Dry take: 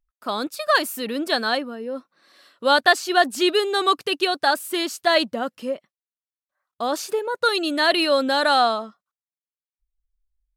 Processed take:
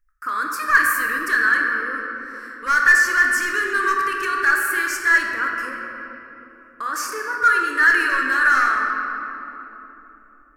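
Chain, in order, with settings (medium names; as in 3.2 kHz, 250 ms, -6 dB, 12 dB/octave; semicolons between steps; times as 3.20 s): hard clipper -14 dBFS, distortion -13 dB; peak limiter -21.5 dBFS, peak gain reduction 7.5 dB; FFT filter 110 Hz 0 dB, 180 Hz -20 dB, 400 Hz -10 dB, 740 Hz -27 dB, 1.1 kHz +2 dB, 1.7 kHz +12 dB, 3.7 kHz -20 dB, 5.3 kHz -2 dB; simulated room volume 210 m³, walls hard, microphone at 0.51 m; trim +6 dB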